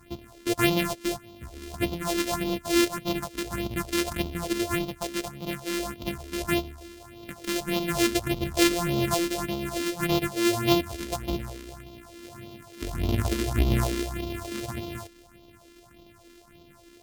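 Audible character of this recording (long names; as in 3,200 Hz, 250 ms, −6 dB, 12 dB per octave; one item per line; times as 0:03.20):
a buzz of ramps at a fixed pitch in blocks of 128 samples
phaser sweep stages 4, 1.7 Hz, lowest notch 120–1,700 Hz
MP3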